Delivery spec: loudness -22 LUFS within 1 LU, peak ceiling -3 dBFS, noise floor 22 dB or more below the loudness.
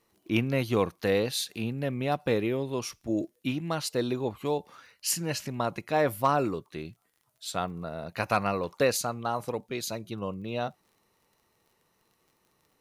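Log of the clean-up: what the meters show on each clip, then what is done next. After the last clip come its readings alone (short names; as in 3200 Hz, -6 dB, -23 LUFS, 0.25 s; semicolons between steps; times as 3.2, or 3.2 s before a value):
ticks 32/s; loudness -30.0 LUFS; peak -12.5 dBFS; loudness target -22.0 LUFS
-> de-click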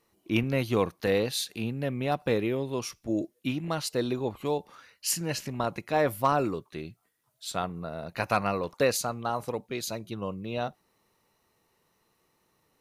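ticks 0/s; loudness -30.0 LUFS; peak -12.5 dBFS; loudness target -22.0 LUFS
-> gain +8 dB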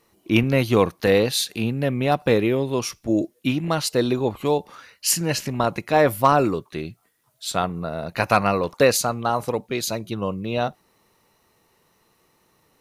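loudness -22.0 LUFS; peak -4.5 dBFS; noise floor -65 dBFS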